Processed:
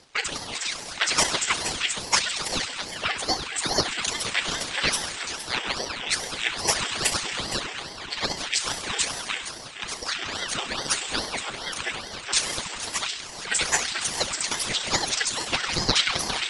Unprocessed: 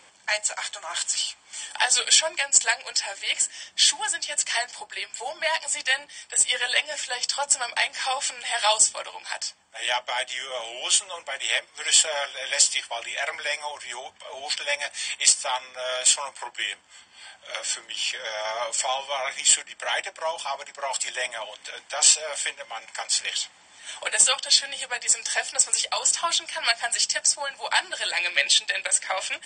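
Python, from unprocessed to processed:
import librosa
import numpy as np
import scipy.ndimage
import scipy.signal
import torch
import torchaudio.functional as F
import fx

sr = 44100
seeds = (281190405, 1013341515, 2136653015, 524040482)

y = scipy.signal.sosfilt(scipy.signal.butter(2, 5200.0, 'lowpass', fs=sr, output='sos'), x)
y = fx.peak_eq(y, sr, hz=790.0, db=-12.0, octaves=0.53)
y = fx.rev_schroeder(y, sr, rt60_s=3.5, comb_ms=27, drr_db=4.5)
y = fx.stretch_grains(y, sr, factor=0.56, grain_ms=66.0)
y = y + 10.0 ** (-12.0 / 20.0) * np.pad(y, (int(466 * sr / 1000.0), 0))[:len(y)]
y = fx.ring_lfo(y, sr, carrier_hz=1400.0, swing_pct=90, hz=2.4)
y = y * librosa.db_to_amplitude(4.5)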